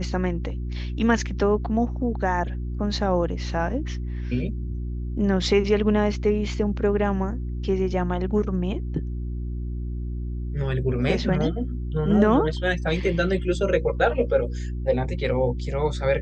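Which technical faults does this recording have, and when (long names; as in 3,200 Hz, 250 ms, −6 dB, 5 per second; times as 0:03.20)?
mains hum 60 Hz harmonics 6 −29 dBFS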